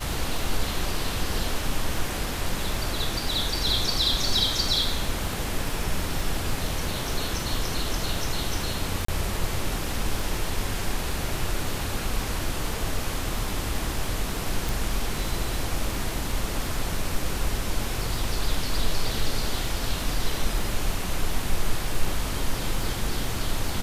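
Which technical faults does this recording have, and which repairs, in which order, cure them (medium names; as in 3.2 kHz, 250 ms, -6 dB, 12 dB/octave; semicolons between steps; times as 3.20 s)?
crackle 20 per s -31 dBFS
9.05–9.08 s: dropout 34 ms
14.69 s: pop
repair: de-click; interpolate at 9.05 s, 34 ms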